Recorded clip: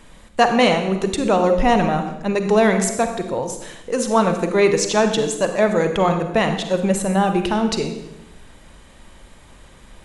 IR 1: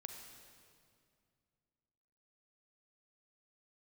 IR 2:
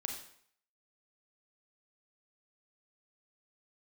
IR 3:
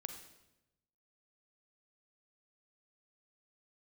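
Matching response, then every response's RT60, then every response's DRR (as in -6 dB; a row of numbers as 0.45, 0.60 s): 3; 2.3, 0.60, 0.95 s; 3.5, 2.0, 6.0 dB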